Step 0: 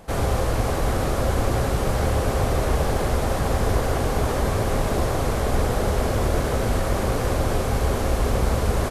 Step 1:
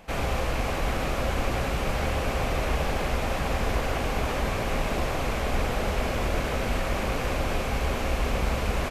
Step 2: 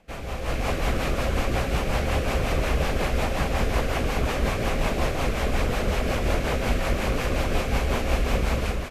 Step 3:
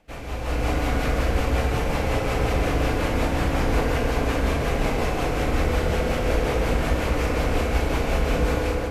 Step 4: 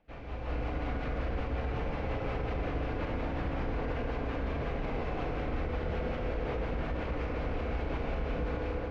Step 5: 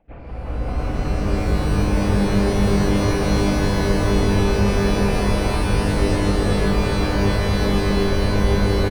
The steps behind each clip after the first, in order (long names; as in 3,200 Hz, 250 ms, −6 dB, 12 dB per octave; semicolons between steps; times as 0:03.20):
graphic EQ with 15 bands 100 Hz −8 dB, 400 Hz −4 dB, 2,500 Hz +9 dB, 10,000 Hz −6 dB; level −3.5 dB
automatic gain control gain up to 10.5 dB; rotating-speaker cabinet horn 5.5 Hz; level −5.5 dB
feedback delay network reverb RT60 3.5 s, high-frequency decay 0.3×, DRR −0.5 dB; level −2 dB
brickwall limiter −15.5 dBFS, peak gain reduction 6 dB; high-frequency loss of the air 260 metres; level −8.5 dB
spectral envelope exaggerated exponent 1.5; single-tap delay 251 ms −4.5 dB; reverb with rising layers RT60 3.8 s, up +12 semitones, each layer −2 dB, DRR −0.5 dB; level +7.5 dB